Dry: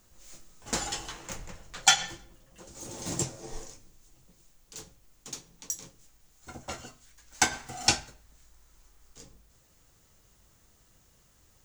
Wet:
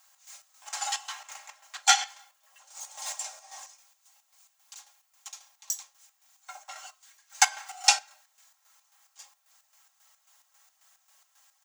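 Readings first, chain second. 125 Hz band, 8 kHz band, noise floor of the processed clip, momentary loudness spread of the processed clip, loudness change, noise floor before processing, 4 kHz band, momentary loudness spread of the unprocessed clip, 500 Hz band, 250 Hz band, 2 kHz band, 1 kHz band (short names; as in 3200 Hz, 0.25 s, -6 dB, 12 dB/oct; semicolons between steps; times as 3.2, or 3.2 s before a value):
under -40 dB, +1.5 dB, -71 dBFS, 23 LU, +2.5 dB, -64 dBFS, +1.0 dB, 23 LU, -9.5 dB, under -40 dB, +1.5 dB, +3.5 dB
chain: steep high-pass 630 Hz 96 dB/oct; comb 3.7 ms, depth 75%; chopper 3.7 Hz, depth 60%, duty 55%; gain +1.5 dB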